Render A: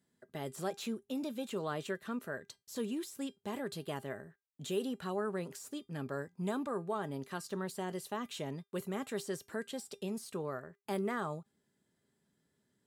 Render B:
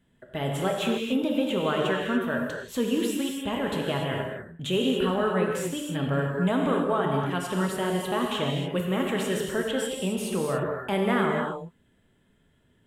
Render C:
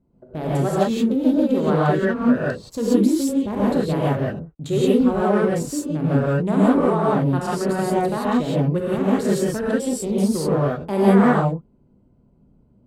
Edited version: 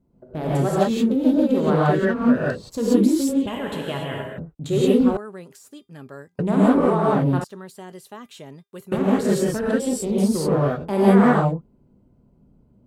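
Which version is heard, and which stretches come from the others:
C
0:03.47–0:04.38: punch in from B
0:05.17–0:06.39: punch in from A
0:07.44–0:08.92: punch in from A

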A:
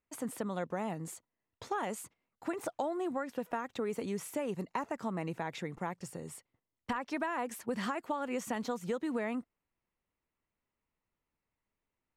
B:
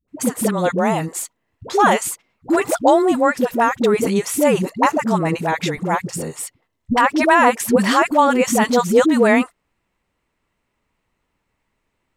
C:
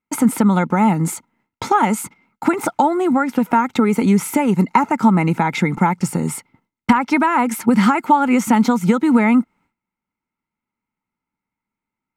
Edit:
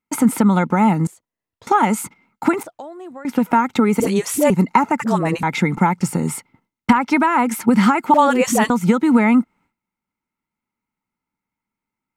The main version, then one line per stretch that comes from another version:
C
0:01.07–0:01.67: punch in from A
0:02.63–0:03.25: punch in from A
0:04.00–0:04.50: punch in from B
0:05.00–0:05.43: punch in from B
0:08.14–0:08.70: punch in from B

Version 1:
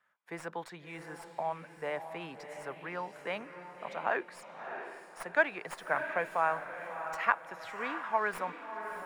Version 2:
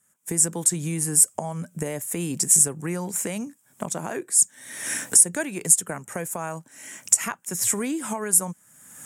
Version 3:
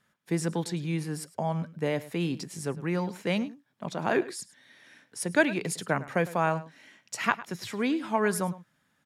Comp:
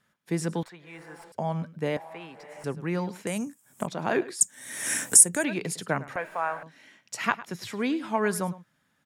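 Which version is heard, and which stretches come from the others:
3
0:00.63–0:01.32: punch in from 1
0:01.97–0:02.64: punch in from 1
0:03.27–0:03.87: punch in from 2
0:04.41–0:05.44: punch in from 2
0:06.16–0:06.63: punch in from 1

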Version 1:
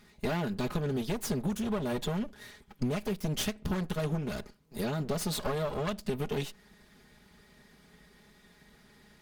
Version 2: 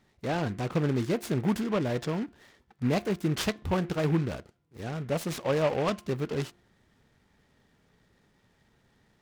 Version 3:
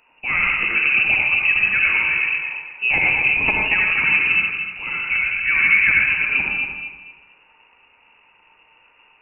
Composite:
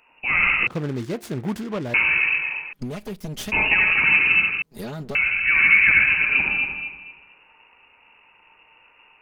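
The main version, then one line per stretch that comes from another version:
3
0:00.67–0:01.94: punch in from 2
0:02.73–0:03.52: punch in from 1
0:04.62–0:05.15: punch in from 1

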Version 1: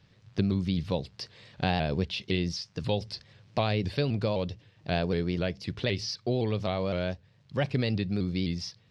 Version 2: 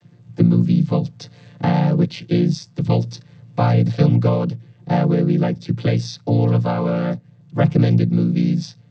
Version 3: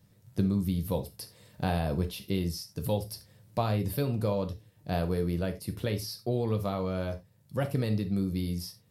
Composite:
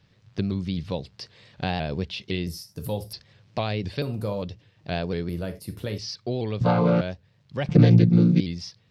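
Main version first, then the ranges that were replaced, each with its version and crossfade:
1
0:02.47–0:03.13: punch in from 3
0:04.02–0:04.42: punch in from 3
0:05.29–0:05.98: punch in from 3
0:06.61–0:07.01: punch in from 2
0:07.69–0:08.40: punch in from 2

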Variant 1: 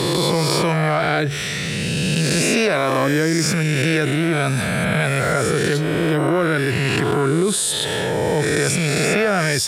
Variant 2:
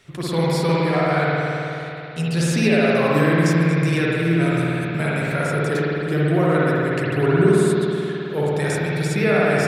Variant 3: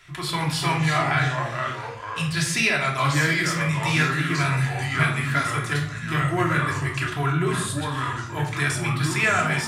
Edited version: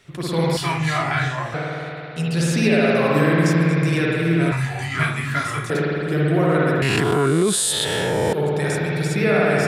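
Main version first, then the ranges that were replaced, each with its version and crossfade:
2
0:00.57–0:01.54: punch in from 3
0:04.52–0:05.70: punch in from 3
0:06.82–0:08.33: punch in from 1

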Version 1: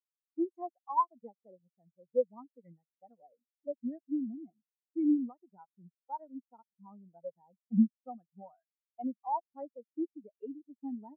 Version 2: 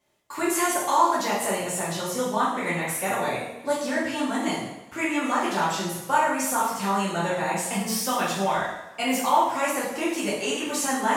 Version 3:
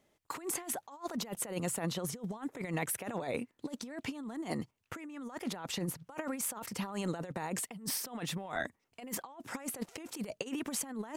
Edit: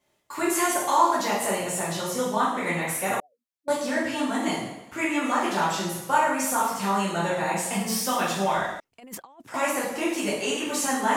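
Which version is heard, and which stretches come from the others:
2
0:03.20–0:03.68: punch in from 1
0:08.80–0:09.54: punch in from 3

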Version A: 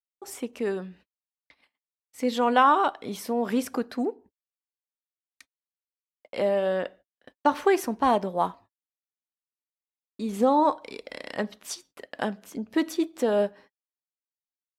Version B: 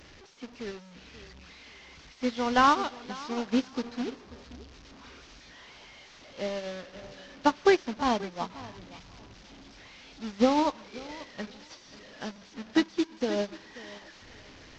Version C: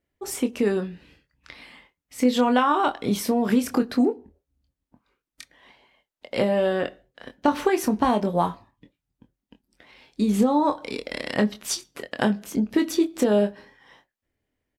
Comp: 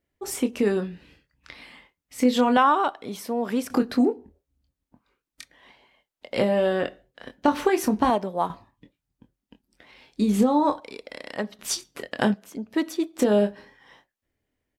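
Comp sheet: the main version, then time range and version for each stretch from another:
C
0:02.57–0:03.70: punch in from A
0:08.10–0:08.50: punch in from A
0:10.80–0:11.59: punch in from A
0:12.34–0:13.19: punch in from A
not used: B

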